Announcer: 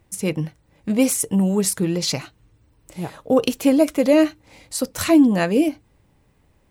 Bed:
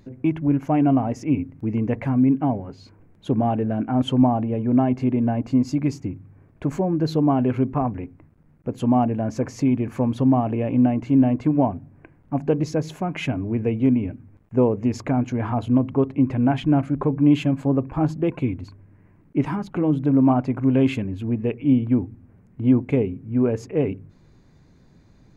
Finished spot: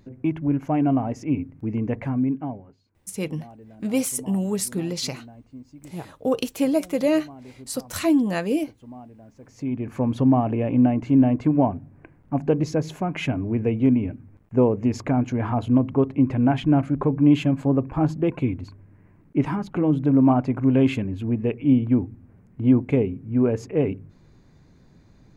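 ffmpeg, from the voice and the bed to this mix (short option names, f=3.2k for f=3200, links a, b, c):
-filter_complex "[0:a]adelay=2950,volume=-5.5dB[a];[1:a]volume=20.5dB,afade=t=out:st=1.99:d=0.84:silence=0.0944061,afade=t=in:st=9.42:d=0.73:silence=0.0707946[b];[a][b]amix=inputs=2:normalize=0"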